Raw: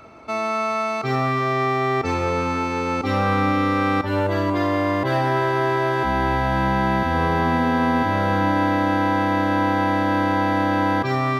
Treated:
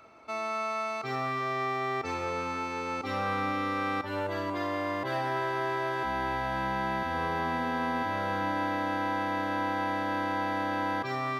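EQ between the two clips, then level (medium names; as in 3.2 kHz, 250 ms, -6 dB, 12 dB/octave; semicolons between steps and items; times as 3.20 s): bass shelf 330 Hz -9 dB; -8.0 dB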